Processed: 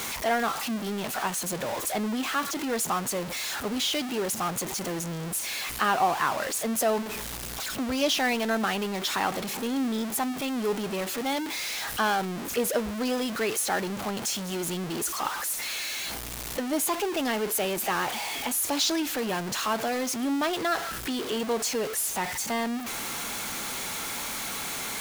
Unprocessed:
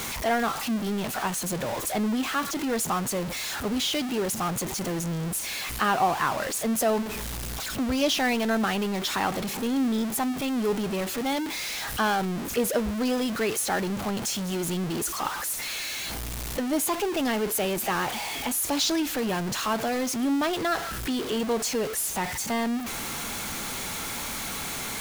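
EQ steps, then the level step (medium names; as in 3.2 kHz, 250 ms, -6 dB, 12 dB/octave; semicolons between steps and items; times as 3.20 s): bass shelf 180 Hz -9 dB; 0.0 dB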